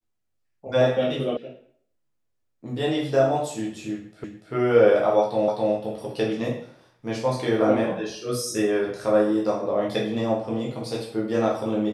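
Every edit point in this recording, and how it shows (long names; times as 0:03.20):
0:01.37: cut off before it has died away
0:04.24: the same again, the last 0.29 s
0:05.48: the same again, the last 0.26 s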